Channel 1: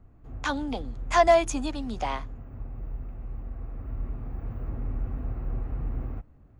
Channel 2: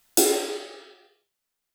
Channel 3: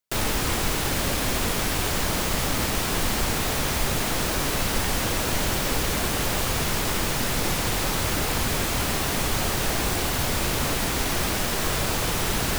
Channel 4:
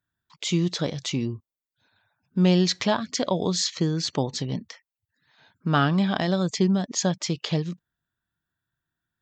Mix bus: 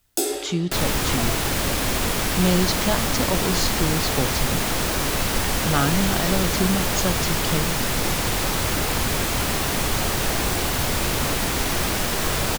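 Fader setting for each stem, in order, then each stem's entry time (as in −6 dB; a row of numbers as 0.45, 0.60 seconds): −17.5, −4.0, +2.0, −1.0 decibels; 0.00, 0.00, 0.60, 0.00 seconds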